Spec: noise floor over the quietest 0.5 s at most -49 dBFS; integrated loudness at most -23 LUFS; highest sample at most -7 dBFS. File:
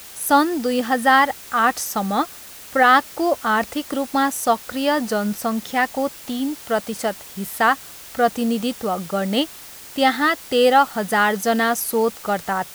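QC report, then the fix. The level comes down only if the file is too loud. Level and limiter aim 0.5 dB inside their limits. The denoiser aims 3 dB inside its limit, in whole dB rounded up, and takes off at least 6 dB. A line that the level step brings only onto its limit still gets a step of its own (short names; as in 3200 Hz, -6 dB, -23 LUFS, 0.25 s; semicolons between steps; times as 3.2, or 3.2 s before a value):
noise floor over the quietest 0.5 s -39 dBFS: fail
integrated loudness -20.0 LUFS: fail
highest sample -3.5 dBFS: fail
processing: denoiser 10 dB, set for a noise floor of -39 dBFS; gain -3.5 dB; limiter -7.5 dBFS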